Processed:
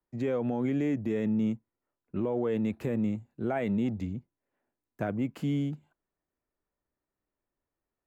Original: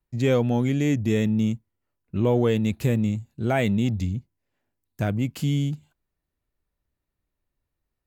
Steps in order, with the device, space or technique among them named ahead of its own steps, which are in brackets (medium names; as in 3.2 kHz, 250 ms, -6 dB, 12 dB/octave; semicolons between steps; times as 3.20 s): DJ mixer with the lows and highs turned down (three-band isolator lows -13 dB, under 210 Hz, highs -16 dB, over 2 kHz; peak limiter -21.5 dBFS, peak gain reduction 9.5 dB)